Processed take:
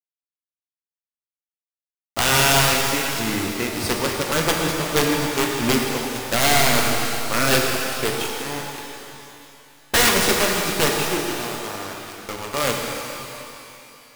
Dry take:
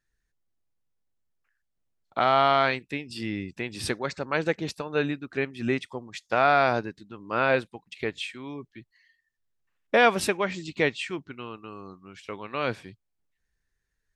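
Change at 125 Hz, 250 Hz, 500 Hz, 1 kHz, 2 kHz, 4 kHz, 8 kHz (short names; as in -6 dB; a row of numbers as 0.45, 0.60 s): +9.0, +7.0, +3.0, +2.5, +6.5, +13.5, +21.0 dB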